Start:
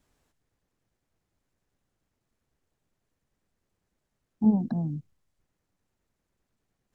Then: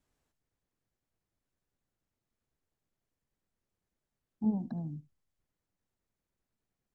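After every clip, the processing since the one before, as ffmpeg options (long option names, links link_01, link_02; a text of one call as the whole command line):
ffmpeg -i in.wav -af "aecho=1:1:73:0.0944,volume=-8.5dB" out.wav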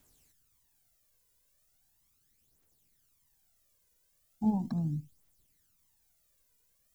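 ffmpeg -i in.wav -af "aphaser=in_gain=1:out_gain=1:delay=2.1:decay=0.58:speed=0.38:type=triangular,crystalizer=i=4.5:c=0,volume=3dB" out.wav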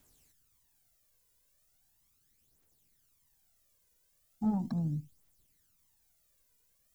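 ffmpeg -i in.wav -af "asoftclip=type=tanh:threshold=-22dB" out.wav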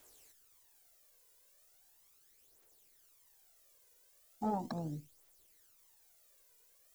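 ffmpeg -i in.wav -af "lowshelf=frequency=290:width_type=q:width=1.5:gain=-12,volume=5.5dB" out.wav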